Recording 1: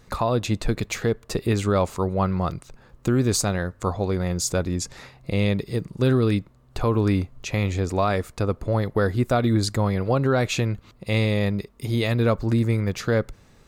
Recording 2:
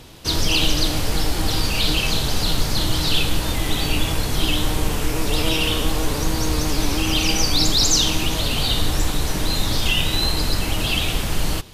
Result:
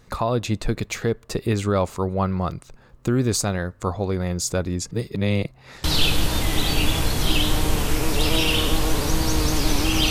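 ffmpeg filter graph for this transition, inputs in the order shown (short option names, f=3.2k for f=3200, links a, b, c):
-filter_complex "[0:a]apad=whole_dur=10.1,atrim=end=10.1,asplit=2[a][b];[a]atrim=end=4.912[c];[b]atrim=start=4.908:end=5.842,asetpts=PTS-STARTPTS,areverse[d];[1:a]atrim=start=2.968:end=7.23[e];[c][d]acrossfade=d=0.004:c1=hsin:c2=hsin[f];[f][e]acrossfade=d=0.004:c1=hsin:c2=hsin"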